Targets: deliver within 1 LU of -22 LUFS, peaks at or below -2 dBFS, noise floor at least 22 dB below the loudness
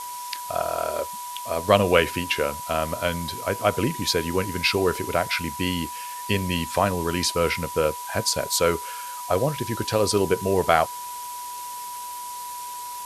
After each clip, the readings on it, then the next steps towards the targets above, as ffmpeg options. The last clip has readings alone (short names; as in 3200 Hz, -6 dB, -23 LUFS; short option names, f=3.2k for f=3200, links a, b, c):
steady tone 980 Hz; tone level -33 dBFS; noise floor -35 dBFS; noise floor target -47 dBFS; loudness -24.5 LUFS; peak -2.0 dBFS; loudness target -22.0 LUFS
-> -af "bandreject=f=980:w=30"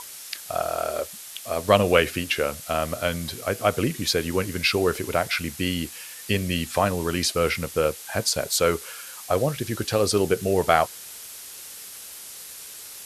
steady tone none; noise floor -41 dBFS; noise floor target -47 dBFS
-> -af "afftdn=nr=6:nf=-41"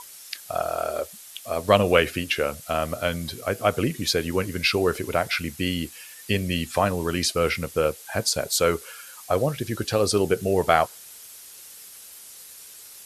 noise floor -45 dBFS; noise floor target -47 dBFS
-> -af "afftdn=nr=6:nf=-45"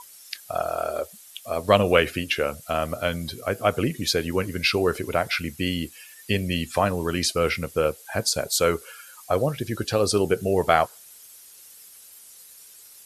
noise floor -48 dBFS; loudness -24.5 LUFS; peak -2.0 dBFS; loudness target -22.0 LUFS
-> -af "volume=2.5dB,alimiter=limit=-2dB:level=0:latency=1"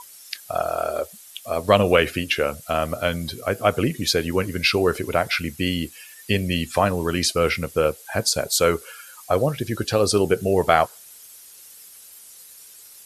loudness -22.0 LUFS; peak -2.0 dBFS; noise floor -46 dBFS